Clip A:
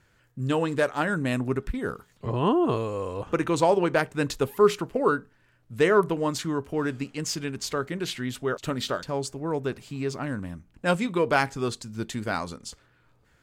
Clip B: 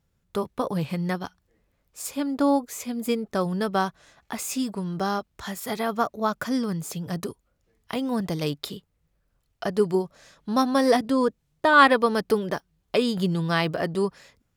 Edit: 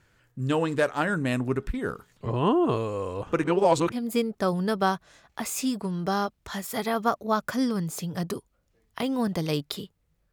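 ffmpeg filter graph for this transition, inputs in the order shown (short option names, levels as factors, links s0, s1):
-filter_complex "[0:a]apad=whole_dur=10.32,atrim=end=10.32,asplit=2[s0][s1];[s0]atrim=end=3.442[s2];[s1]atrim=start=3.438:end=3.922,asetpts=PTS-STARTPTS,areverse[s3];[1:a]atrim=start=2.848:end=9.25[s4];[s2][s3]acrossfade=d=0.004:c1=hsin:c2=hsin[s5];[s5][s4]acrossfade=d=0.004:c1=hsin:c2=hsin"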